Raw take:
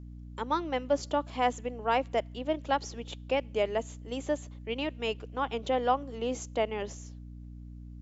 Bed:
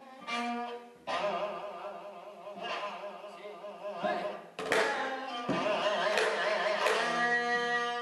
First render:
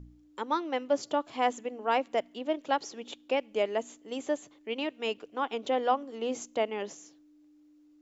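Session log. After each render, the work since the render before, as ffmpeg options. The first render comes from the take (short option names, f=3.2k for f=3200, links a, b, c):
-af "bandreject=f=60:t=h:w=4,bandreject=f=120:t=h:w=4,bandreject=f=180:t=h:w=4,bandreject=f=240:t=h:w=4"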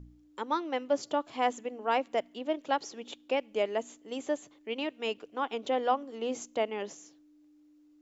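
-af "volume=-1dB"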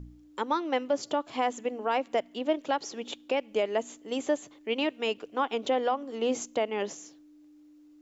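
-af "acontrast=38,alimiter=limit=-17dB:level=0:latency=1:release=201"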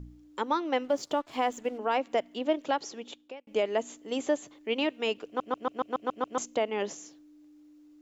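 -filter_complex "[0:a]asettb=1/sr,asplit=3[a][b][c];[a]atrim=end=0.844[d];[b]atrim=start=0.84:end=1.78,asetpts=PTS-STARTPTS,afade=t=in:d=0.004:c=qsin,afade=t=out:st=0.936:d=0.004:c=qsin,aeval=exprs='sgn(val(0))*max(abs(val(0))-0.00188,0)':c=same[e];[c]atrim=start=1.776[f];[d][e]acrossfade=d=0.004:c1=hsin:c2=qsin[g];[g][f]acrossfade=d=0.004:c1=qsin:c2=hsin,asplit=10[h][i][j][k][l][m][n][o][p][q];[h]atrim=end=3.47,asetpts=PTS-STARTPTS,afade=t=out:st=2.74:d=0.73[r];[i]atrim=start=3.47:end=5.402,asetpts=PTS-STARTPTS,afade=t=in:d=0.004:c=hsin[s];[j]atrim=start=5.258:end=5.402[t];[k]atrim=start=5.258:end=5.402[u];[l]atrim=start=5.258:end=5.402[v];[m]atrim=start=5.258:end=5.402[w];[n]atrim=start=5.258:end=5.402[x];[o]atrim=start=5.258:end=5.402[y];[p]atrim=start=5.258:end=5.402[z];[q]atrim=start=6.378[aa];[r][s]concat=n=2:v=0:a=1[ab];[ab][t]acrossfade=d=0.004:c1=hsin:c2=hsin[ac];[ac][u]acrossfade=d=0.004:c1=hsin:c2=hsin[ad];[ad][v]acrossfade=d=0.004:c1=hsin:c2=hsin[ae];[ae][w]acrossfade=d=0.004:c1=hsin:c2=hsin[af];[af][x]acrossfade=d=0.004:c1=hsin:c2=hsin[ag];[ag][y]acrossfade=d=0.004:c1=hsin:c2=hsin[ah];[ah][z]acrossfade=d=0.004:c1=hsin:c2=hsin[ai];[ai][aa]acrossfade=d=0.004:c1=hsin:c2=hsin"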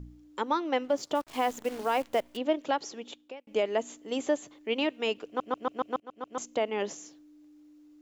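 -filter_complex "[0:a]asettb=1/sr,asplit=3[a][b][c];[a]atrim=end=1.154[d];[b]atrim=start=1.15:end=2.37,asetpts=PTS-STARTPTS,afade=t=in:d=0.004:c=qsin,afade=t=out:st=1.216:d=0.004:c=qsin,acrusher=bits=8:dc=4:mix=0:aa=0.000001[e];[c]atrim=start=2.366[f];[d][e]acrossfade=d=0.004:c1=hsin:c2=qsin[g];[g][f]acrossfade=d=0.004:c1=qsin:c2=hsin,asplit=2[h][i];[h]atrim=end=6,asetpts=PTS-STARTPTS,afade=t=out:st=5.996:d=0.004:c=hsin:silence=0.0944061[j];[i]atrim=start=6,asetpts=PTS-STARTPTS,afade=t=in:d=0.64:silence=0.0944061[k];[j][k]concat=n=2:v=0:a=1"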